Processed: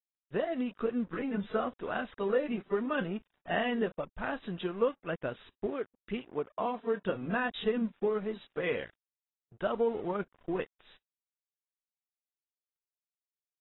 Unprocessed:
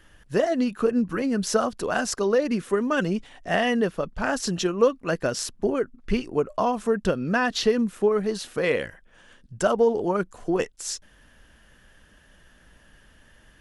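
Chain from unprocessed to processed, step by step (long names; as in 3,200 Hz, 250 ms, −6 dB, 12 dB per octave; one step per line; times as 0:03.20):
dead-zone distortion −41.5 dBFS
0:05.66–0:07.12: high-pass filter 170 Hz 6 dB per octave
level −9 dB
AAC 16 kbit/s 22,050 Hz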